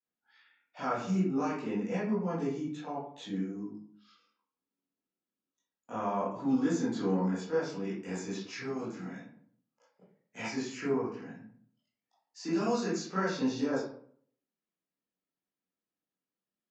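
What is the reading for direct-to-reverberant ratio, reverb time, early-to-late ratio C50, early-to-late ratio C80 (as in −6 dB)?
−11.0 dB, 0.60 s, 2.0 dB, 7.0 dB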